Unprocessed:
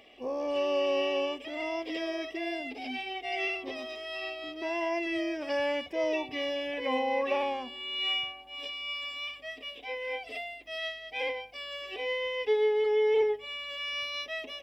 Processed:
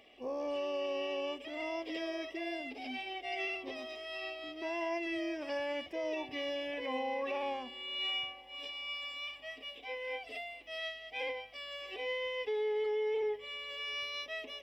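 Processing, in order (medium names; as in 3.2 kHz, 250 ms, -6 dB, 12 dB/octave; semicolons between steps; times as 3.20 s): peak limiter -24 dBFS, peak gain reduction 6 dB; thinning echo 653 ms, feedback 79%, level -24 dB; trim -4.5 dB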